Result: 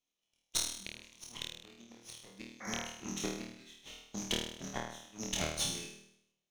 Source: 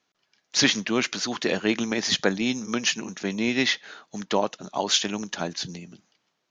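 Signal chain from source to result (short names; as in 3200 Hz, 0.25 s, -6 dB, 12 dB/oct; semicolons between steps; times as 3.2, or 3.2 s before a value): minimum comb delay 0.32 ms; gate -42 dBFS, range -13 dB; high shelf 7000 Hz -3 dB; flipped gate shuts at -17 dBFS, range -32 dB; high shelf 2700 Hz +9.5 dB; painted sound noise, 2.6–2.83, 500–2300 Hz -40 dBFS; on a send: flutter echo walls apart 4.4 m, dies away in 0.71 s; on the sum: gain -7.5 dB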